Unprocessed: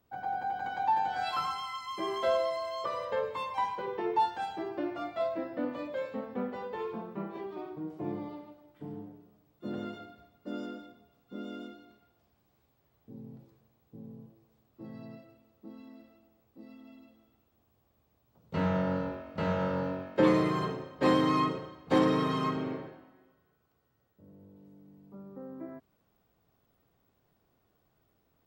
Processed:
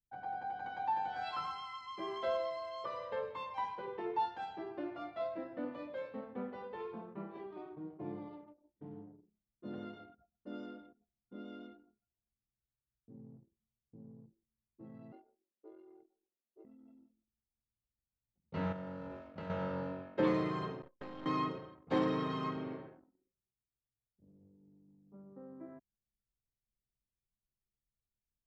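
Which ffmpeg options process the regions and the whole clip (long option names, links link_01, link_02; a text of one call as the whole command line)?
ffmpeg -i in.wav -filter_complex "[0:a]asettb=1/sr,asplit=3[link_01][link_02][link_03];[link_01]atrim=end=15.124[link_04];[link_02]atrim=start=15.12:end=16.65,asetpts=PTS-STARTPTS,afade=type=in:duration=0.004:curve=qsin,afade=type=out:start_time=1.526:duration=0.004:curve=qsin,highpass=160,afreqshift=110[link_05];[link_03]atrim=start=16.646[link_06];[link_04][link_05]acrossfade=duration=0.004:curve1=hsin:curve2=qsin[link_07];[link_07][link_06]acrossfade=duration=0.004:curve1=qsin:curve2=hsin,asettb=1/sr,asplit=3[link_08][link_09][link_10];[link_08]atrim=end=18.724[link_11];[link_09]atrim=start=18.72:end=19.5,asetpts=PTS-STARTPTS,afade=type=in:duration=0.004:curve=qsin,afade=type=out:start_time=0.776:duration=0.004:curve=qsin,acompressor=threshold=-33dB:ratio=10:attack=3.2:release=140:knee=1:detection=peak,aeval=exprs='val(0)*gte(abs(val(0)),0.00188)':channel_layout=same[link_12];[link_10]atrim=start=19.496[link_13];[link_11][link_12]acrossfade=duration=0.004:curve1=hsin:curve2=qsin[link_14];[link_14][link_13]acrossfade=duration=0.004:curve1=qsin:curve2=hsin,asettb=1/sr,asplit=3[link_15][link_16][link_17];[link_15]atrim=end=20.824[link_18];[link_16]atrim=start=20.82:end=21.26,asetpts=PTS-STARTPTS,afade=type=in:duration=0.004:curve=qsin,afade=type=out:start_time=0.436:duration=0.004:curve=qsin,aeval=exprs='if(lt(val(0),0),0.251*val(0),val(0))':channel_layout=same,agate=range=-33dB:threshold=-46dB:ratio=3:release=100:detection=peak,acompressor=threshold=-34dB:ratio=12:attack=3.2:release=140:knee=1:detection=peak[link_19];[link_17]atrim=start=21.256[link_20];[link_18][link_19]acrossfade=duration=0.004:curve1=hsin:curve2=qsin[link_21];[link_21][link_20]acrossfade=duration=0.004:curve1=qsin:curve2=hsin,lowpass=4900,anlmdn=0.00251,volume=-7dB" out.wav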